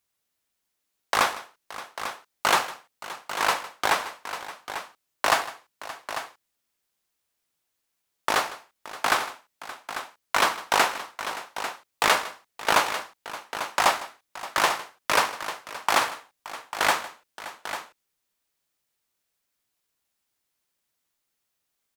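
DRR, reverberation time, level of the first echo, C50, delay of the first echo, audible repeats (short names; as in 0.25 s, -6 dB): none, none, -17.5 dB, none, 0.156 s, 3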